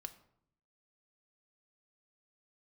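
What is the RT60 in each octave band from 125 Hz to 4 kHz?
1.0 s, 0.90 s, 0.70 s, 0.65 s, 0.50 s, 0.40 s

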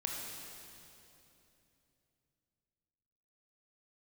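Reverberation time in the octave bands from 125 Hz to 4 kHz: 4.2 s, 3.7 s, 3.2 s, 2.7 s, 2.7 s, 2.6 s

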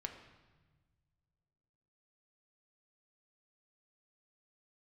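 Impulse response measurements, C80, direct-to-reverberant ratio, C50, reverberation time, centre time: 9.5 dB, 3.5 dB, 8.0 dB, 1.4 s, 23 ms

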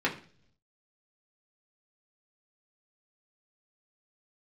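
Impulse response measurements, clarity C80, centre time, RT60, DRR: 17.0 dB, 15 ms, 0.50 s, -4.5 dB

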